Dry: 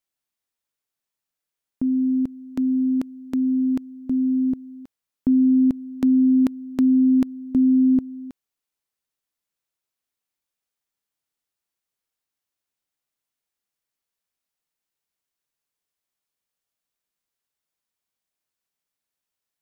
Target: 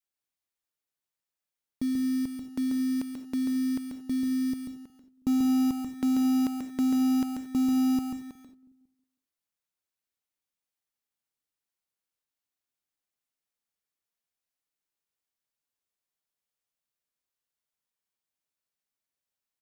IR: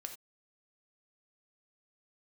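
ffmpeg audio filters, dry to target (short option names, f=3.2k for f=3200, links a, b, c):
-filter_complex "[0:a]acrusher=bits=4:mode=log:mix=0:aa=0.000001,asplit=2[a][b];[b]adelay=182,lowpass=f=900:p=1,volume=-21dB,asplit=2[c][d];[d]adelay=182,lowpass=f=900:p=1,volume=0.53,asplit=2[e][f];[f]adelay=182,lowpass=f=900:p=1,volume=0.53,asplit=2[g][h];[h]adelay=182,lowpass=f=900:p=1,volume=0.53[i];[a][c][e][g][i]amix=inputs=5:normalize=0,asplit=2[j][k];[1:a]atrim=start_sample=2205,adelay=138[l];[k][l]afir=irnorm=-1:irlink=0,volume=-0.5dB[m];[j][m]amix=inputs=2:normalize=0,adynamicequalizer=threshold=0.0398:dfrequency=320:dqfactor=0.7:tfrequency=320:tqfactor=0.7:attack=5:release=100:ratio=0.375:range=2.5:mode=cutabove:tftype=bell,volume=-6.5dB"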